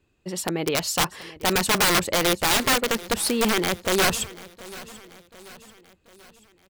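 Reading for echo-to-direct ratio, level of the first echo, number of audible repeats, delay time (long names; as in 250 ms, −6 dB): −17.5 dB, −19.0 dB, 3, 736 ms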